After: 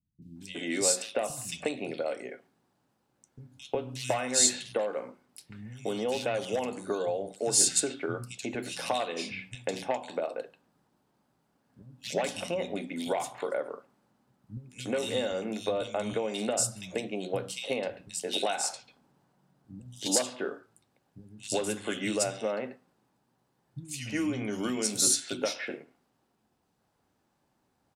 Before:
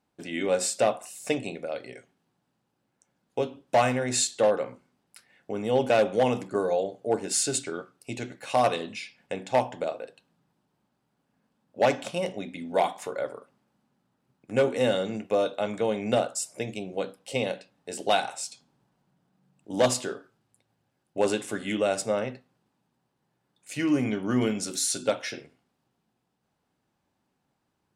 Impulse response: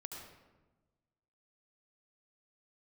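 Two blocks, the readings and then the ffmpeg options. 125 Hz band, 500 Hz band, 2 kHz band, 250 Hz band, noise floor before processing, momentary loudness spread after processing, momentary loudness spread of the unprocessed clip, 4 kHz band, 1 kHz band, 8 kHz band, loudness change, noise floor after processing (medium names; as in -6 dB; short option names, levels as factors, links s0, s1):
-5.5 dB, -5.5 dB, -3.5 dB, -4.5 dB, -77 dBFS, 19 LU, 13 LU, +1.0 dB, -7.0 dB, +3.5 dB, -3.0 dB, -75 dBFS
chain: -filter_complex "[0:a]acrossover=split=2800[s0][s1];[s0]acompressor=threshold=0.0316:ratio=16[s2];[s2][s1]amix=inputs=2:normalize=0,acrossover=split=170|2700[s3][s4][s5];[s5]adelay=220[s6];[s4]adelay=360[s7];[s3][s7][s6]amix=inputs=3:normalize=0,volume=1.5"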